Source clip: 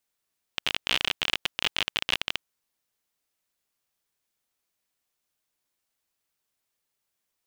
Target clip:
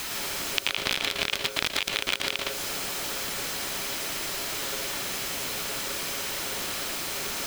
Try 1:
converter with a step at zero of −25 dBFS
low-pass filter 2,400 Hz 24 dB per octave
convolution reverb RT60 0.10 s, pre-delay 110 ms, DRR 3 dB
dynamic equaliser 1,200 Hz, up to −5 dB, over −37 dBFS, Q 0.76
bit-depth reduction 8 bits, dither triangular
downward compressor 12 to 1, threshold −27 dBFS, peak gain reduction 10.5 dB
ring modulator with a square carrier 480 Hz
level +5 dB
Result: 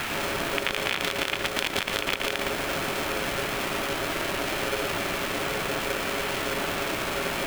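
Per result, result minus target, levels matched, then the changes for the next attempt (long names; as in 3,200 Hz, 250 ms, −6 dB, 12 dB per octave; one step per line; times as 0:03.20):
converter with a step at zero: distortion +10 dB; 2,000 Hz band +2.5 dB
change: converter with a step at zero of −35.5 dBFS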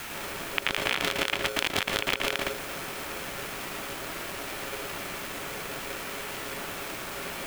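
2,000 Hz band +3.0 dB
remove: low-pass filter 2,400 Hz 24 dB per octave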